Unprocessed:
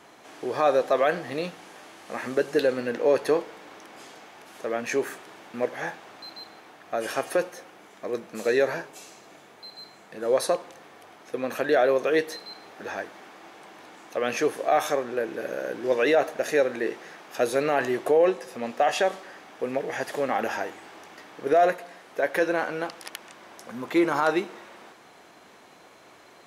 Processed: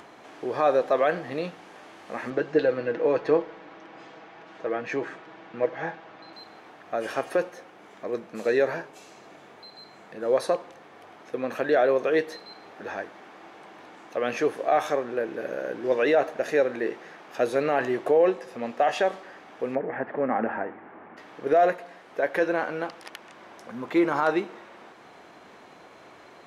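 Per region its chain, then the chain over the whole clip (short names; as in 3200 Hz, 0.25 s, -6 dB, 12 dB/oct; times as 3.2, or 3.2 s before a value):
2.3–6.33 air absorption 120 m + comb 6.2 ms, depth 51%
19.75–21.17 LPF 2000 Hz 24 dB/oct + bell 230 Hz +7 dB 0.54 oct
whole clip: LPF 2800 Hz 6 dB/oct; upward compressor, threshold -43 dBFS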